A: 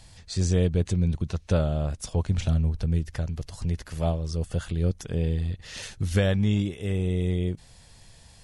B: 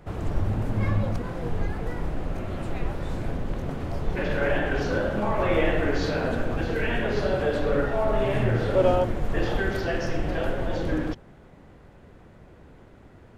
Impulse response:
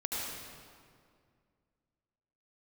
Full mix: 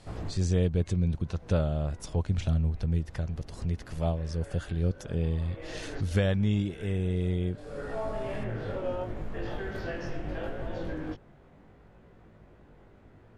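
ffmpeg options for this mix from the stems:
-filter_complex "[0:a]volume=0.708,asplit=2[s0][s1];[1:a]acompressor=threshold=0.0501:ratio=2.5,flanger=delay=18:depth=2.4:speed=0.74,volume=0.75[s2];[s1]apad=whole_len=589686[s3];[s2][s3]sidechaincompress=threshold=0.00708:ratio=8:attack=23:release=310[s4];[s0][s4]amix=inputs=2:normalize=0,highshelf=f=5600:g=-7"

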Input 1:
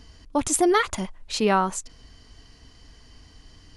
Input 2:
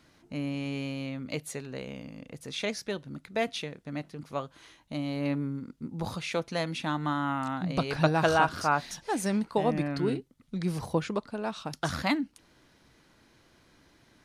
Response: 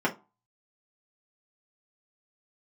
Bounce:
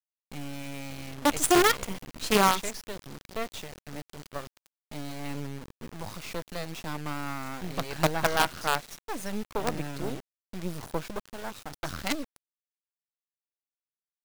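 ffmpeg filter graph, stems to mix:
-filter_complex "[0:a]adelay=900,volume=0.794[s0];[1:a]volume=0.891[s1];[s0][s1]amix=inputs=2:normalize=0,acrusher=bits=4:dc=4:mix=0:aa=0.000001"

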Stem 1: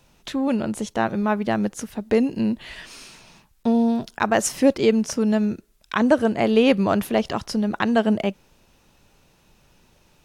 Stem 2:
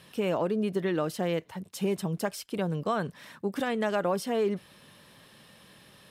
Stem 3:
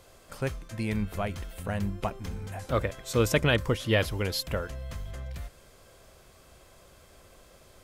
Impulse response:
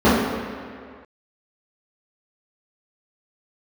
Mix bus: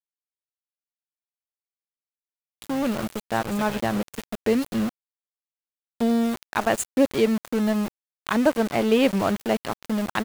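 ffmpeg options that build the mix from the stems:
-filter_complex "[0:a]acrusher=bits=7:mix=0:aa=0.000001,adelay=2350,volume=0.75[s0];[1:a]acrossover=split=210|3000[s1][s2][s3];[s2]acompressor=threshold=0.002:ratio=2[s4];[s1][s4][s3]amix=inputs=3:normalize=0,volume=0.299[s5];[2:a]aeval=exprs='val(0)+0.00447*(sin(2*PI*60*n/s)+sin(2*PI*2*60*n/s)/2+sin(2*PI*3*60*n/s)/3+sin(2*PI*4*60*n/s)/4+sin(2*PI*5*60*n/s)/5)':c=same,adelay=250,volume=0.211[s6];[s0][s5][s6]amix=inputs=3:normalize=0,asuperstop=centerf=5500:order=8:qfactor=3.4,aeval=exprs='val(0)*gte(abs(val(0)),0.0422)':c=same"

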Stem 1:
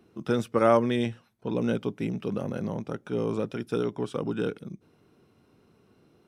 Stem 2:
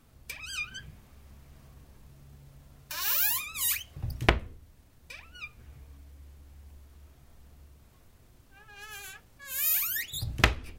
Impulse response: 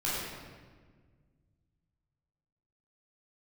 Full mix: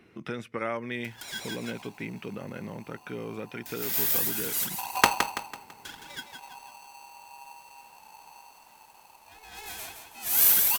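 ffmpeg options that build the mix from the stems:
-filter_complex "[0:a]acompressor=threshold=0.00708:ratio=2,equalizer=f=2100:w=1.6:g=14.5,volume=1.12,asplit=2[s0][s1];[1:a]highshelf=f=9400:g=7.5,aeval=exprs='val(0)*sgn(sin(2*PI*880*n/s))':c=same,adelay=750,volume=1.19,asplit=2[s2][s3];[s3]volume=0.447[s4];[s1]apad=whole_len=508652[s5];[s2][s5]sidechaincompress=threshold=0.00562:ratio=8:attack=8.9:release=349[s6];[s4]aecho=0:1:166|332|498|664|830|996:1|0.4|0.16|0.064|0.0256|0.0102[s7];[s0][s6][s7]amix=inputs=3:normalize=0"

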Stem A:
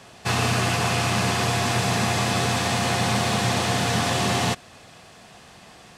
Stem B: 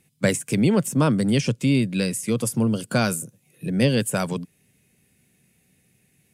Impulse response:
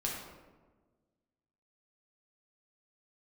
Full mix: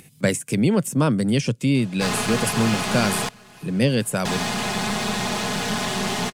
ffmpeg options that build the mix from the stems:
-filter_complex "[0:a]aecho=1:1:4.8:0.89,aeval=exprs='clip(val(0),-1,0.0708)':c=same,adelay=1750,volume=0.75,asplit=3[s0][s1][s2];[s0]atrim=end=3.29,asetpts=PTS-STARTPTS,afade=t=out:st=3.286:d=0.004:c=hsin[s3];[s1]atrim=start=3.29:end=4.25,asetpts=PTS-STARTPTS,volume=0[s4];[s2]atrim=start=4.25,asetpts=PTS-STARTPTS,afade=t=in:d=0.004:c=hsin[s5];[s3][s4][s5]concat=n=3:v=0:a=1,asplit=2[s6][s7];[s7]volume=0.0708[s8];[1:a]volume=1[s9];[s8]aecho=0:1:1079:1[s10];[s6][s9][s10]amix=inputs=3:normalize=0,acompressor=mode=upward:threshold=0.0141:ratio=2.5"

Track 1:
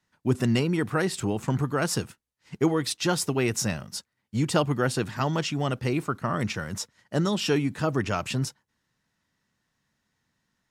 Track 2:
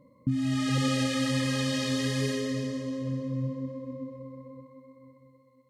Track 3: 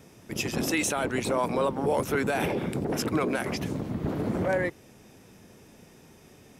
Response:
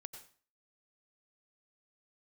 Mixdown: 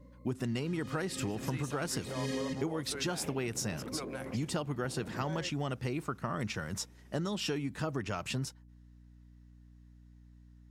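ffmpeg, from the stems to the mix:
-filter_complex "[0:a]aeval=exprs='val(0)+0.00282*(sin(2*PI*60*n/s)+sin(2*PI*2*60*n/s)/2+sin(2*PI*3*60*n/s)/3+sin(2*PI*4*60*n/s)/4+sin(2*PI*5*60*n/s)/5)':c=same,volume=0.631,asplit=2[s0][s1];[1:a]volume=0.794[s2];[2:a]adelay=800,volume=0.211[s3];[s1]apad=whole_len=251053[s4];[s2][s4]sidechaincompress=threshold=0.00501:ratio=6:attack=9.4:release=199[s5];[s0][s5][s3]amix=inputs=3:normalize=0,acompressor=threshold=0.0282:ratio=6"

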